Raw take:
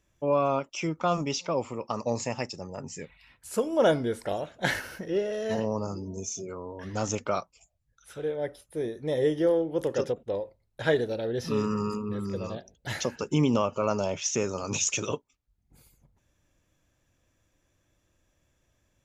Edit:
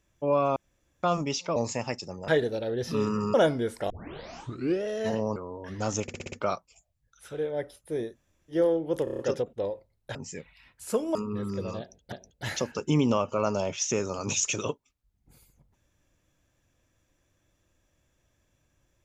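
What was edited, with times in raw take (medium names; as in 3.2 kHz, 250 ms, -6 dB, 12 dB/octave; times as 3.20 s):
0.56–1.03 s: room tone
1.56–2.07 s: delete
2.79–3.79 s: swap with 10.85–11.91 s
4.35 s: tape start 0.94 s
5.81–6.51 s: delete
7.17 s: stutter 0.06 s, 6 plays
8.97–9.38 s: room tone, crossfade 0.10 s
9.89 s: stutter 0.03 s, 6 plays
12.56–12.88 s: loop, 2 plays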